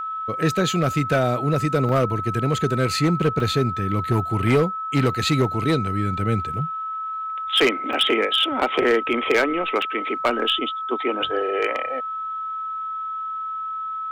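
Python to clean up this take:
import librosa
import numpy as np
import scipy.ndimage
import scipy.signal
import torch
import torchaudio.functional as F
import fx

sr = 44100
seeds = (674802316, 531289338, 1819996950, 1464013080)

y = fx.fix_declip(x, sr, threshold_db=-12.0)
y = fx.notch(y, sr, hz=1300.0, q=30.0)
y = fx.fix_interpolate(y, sr, at_s=(1.89, 3.4, 7.93, 9.82), length_ms=3.4)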